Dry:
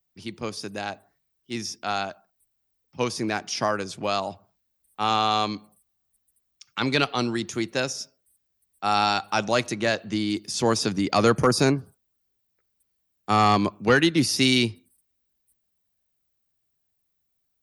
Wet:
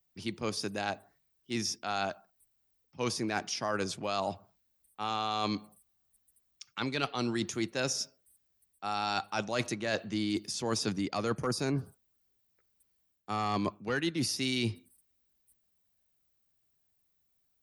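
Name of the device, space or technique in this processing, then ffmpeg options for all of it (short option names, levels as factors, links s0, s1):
compression on the reversed sound: -af "areverse,acompressor=threshold=0.0398:ratio=12,areverse"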